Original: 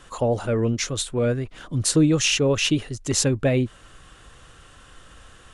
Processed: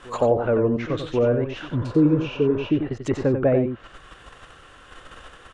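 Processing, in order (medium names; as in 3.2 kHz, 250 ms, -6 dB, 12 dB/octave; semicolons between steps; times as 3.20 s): on a send: reverse echo 1088 ms -20 dB; on the sum: low-pass that closes with the level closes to 1.1 kHz, closed at -19.5 dBFS; tone controls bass -8 dB, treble -10 dB; in parallel at +3 dB: level held to a coarse grid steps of 17 dB; on the sum: delay 91 ms -7.5 dB; spectral replace 1.79–2.68 s, 480–2200 Hz before; trim +1.5 dB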